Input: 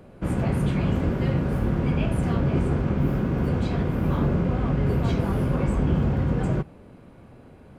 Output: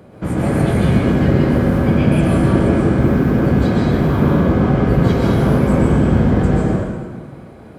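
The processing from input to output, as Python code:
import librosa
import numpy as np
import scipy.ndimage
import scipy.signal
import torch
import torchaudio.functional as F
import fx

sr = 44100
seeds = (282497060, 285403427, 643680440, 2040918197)

y = scipy.signal.sosfilt(scipy.signal.butter(2, 71.0, 'highpass', fs=sr, output='sos'), x)
y = fx.notch(y, sr, hz=2700.0, q=13.0)
y = fx.rev_plate(y, sr, seeds[0], rt60_s=1.6, hf_ratio=0.85, predelay_ms=110, drr_db=-3.5)
y = y * 10.0 ** (5.5 / 20.0)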